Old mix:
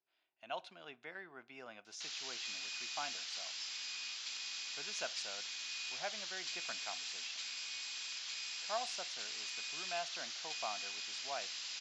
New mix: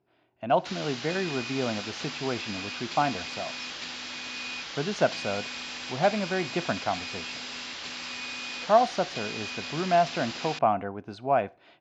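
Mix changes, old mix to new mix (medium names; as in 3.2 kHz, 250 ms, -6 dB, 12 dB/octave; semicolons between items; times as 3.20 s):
background: entry -1.35 s; master: remove differentiator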